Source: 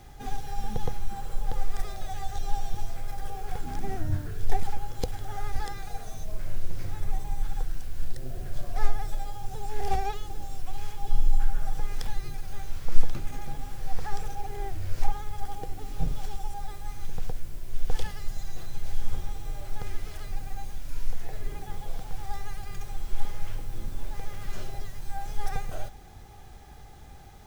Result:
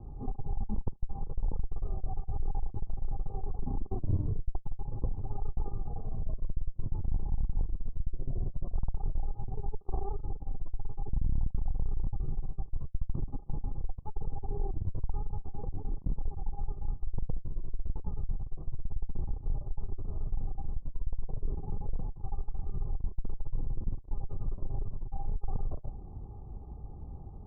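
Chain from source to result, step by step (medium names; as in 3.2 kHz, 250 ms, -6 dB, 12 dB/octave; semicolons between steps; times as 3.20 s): valve stage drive 30 dB, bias 0.4; steep low-pass 1.1 kHz 72 dB/octave; peaking EQ 770 Hz -12.5 dB 1.5 oct; trim +7.5 dB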